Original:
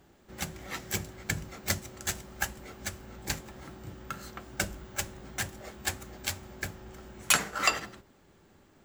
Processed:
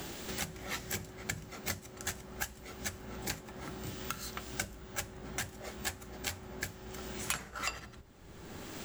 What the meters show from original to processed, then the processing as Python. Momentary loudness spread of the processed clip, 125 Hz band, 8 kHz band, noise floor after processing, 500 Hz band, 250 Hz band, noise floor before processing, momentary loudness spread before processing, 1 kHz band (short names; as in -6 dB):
7 LU, -4.0 dB, -6.0 dB, -52 dBFS, -3.0 dB, -2.0 dB, -61 dBFS, 18 LU, -6.5 dB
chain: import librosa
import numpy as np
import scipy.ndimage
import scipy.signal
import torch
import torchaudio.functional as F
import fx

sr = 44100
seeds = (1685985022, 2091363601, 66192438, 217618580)

y = fx.band_squash(x, sr, depth_pct=100)
y = y * librosa.db_to_amplitude(-5.0)